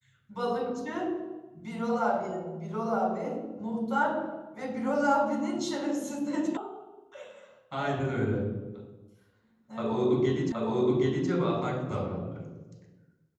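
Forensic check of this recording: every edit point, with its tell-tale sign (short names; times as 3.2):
6.57 sound cut off
10.52 repeat of the last 0.77 s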